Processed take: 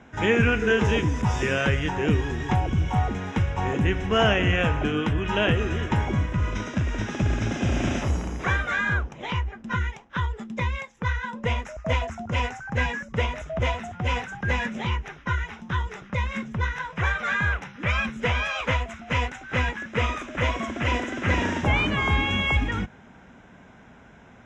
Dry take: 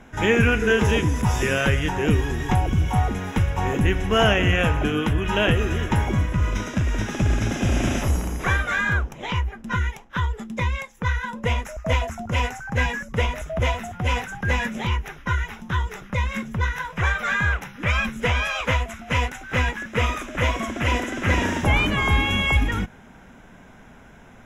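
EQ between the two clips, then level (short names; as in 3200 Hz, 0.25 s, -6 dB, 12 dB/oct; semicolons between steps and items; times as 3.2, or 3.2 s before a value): HPF 54 Hz; Bessel low-pass 5800 Hz, order 6; -2.0 dB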